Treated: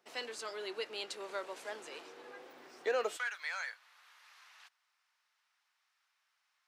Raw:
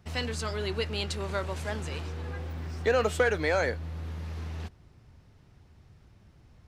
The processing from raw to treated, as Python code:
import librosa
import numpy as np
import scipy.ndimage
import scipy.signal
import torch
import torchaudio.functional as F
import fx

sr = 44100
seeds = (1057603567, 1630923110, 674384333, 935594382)

y = fx.highpass(x, sr, hz=fx.steps((0.0, 340.0), (3.17, 1100.0)), slope=24)
y = F.gain(torch.from_numpy(y), -7.5).numpy()